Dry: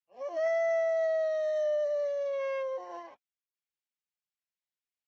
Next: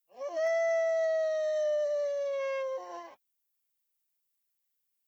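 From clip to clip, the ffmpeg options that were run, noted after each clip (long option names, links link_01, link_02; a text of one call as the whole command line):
ffmpeg -i in.wav -af "aemphasis=mode=production:type=50fm" out.wav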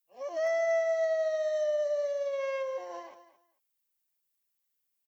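ffmpeg -i in.wav -af "aecho=1:1:222|444:0.2|0.0359" out.wav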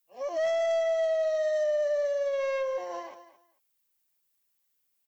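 ffmpeg -i in.wav -af "asoftclip=type=tanh:threshold=-27.5dB,volume=5dB" out.wav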